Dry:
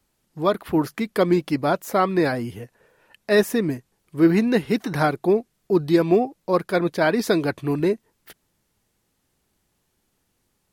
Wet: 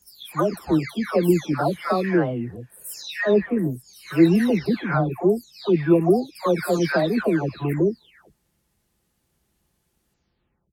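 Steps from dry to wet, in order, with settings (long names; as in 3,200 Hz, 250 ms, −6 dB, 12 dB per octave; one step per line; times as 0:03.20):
every frequency bin delayed by itself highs early, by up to 589 ms
high-pass filter 40 Hz
low-shelf EQ 120 Hz +8 dB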